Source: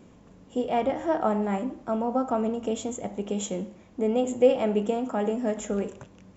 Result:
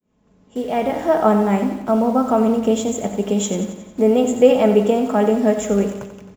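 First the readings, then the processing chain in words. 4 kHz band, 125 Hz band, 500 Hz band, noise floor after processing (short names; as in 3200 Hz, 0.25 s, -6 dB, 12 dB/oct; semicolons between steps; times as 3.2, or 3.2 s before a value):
+9.0 dB, +10.5 dB, +9.0 dB, -57 dBFS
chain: opening faded in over 1.18 s; in parallel at -10 dB: bit-crush 7-bit; on the sum: comb 4.7 ms, depth 32%; feedback echo 90 ms, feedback 56%, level -10.5 dB; gain +6 dB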